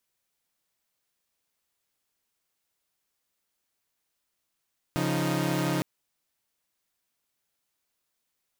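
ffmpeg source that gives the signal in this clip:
-f lavfi -i "aevalsrc='0.0447*((2*mod(138.59*t,1)-1)+(2*mod(174.61*t,1)-1)+(2*mod(311.13*t,1)-1))':d=0.86:s=44100"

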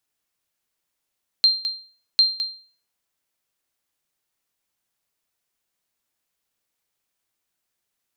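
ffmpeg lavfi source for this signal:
-f lavfi -i "aevalsrc='0.376*(sin(2*PI*4170*mod(t,0.75))*exp(-6.91*mod(t,0.75)/0.42)+0.316*sin(2*PI*4170*max(mod(t,0.75)-0.21,0))*exp(-6.91*max(mod(t,0.75)-0.21,0)/0.42))':d=1.5:s=44100"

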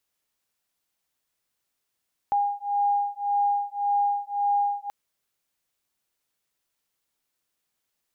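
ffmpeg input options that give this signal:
-f lavfi -i "aevalsrc='0.0562*(sin(2*PI*812*t)+sin(2*PI*813.8*t))':d=2.58:s=44100"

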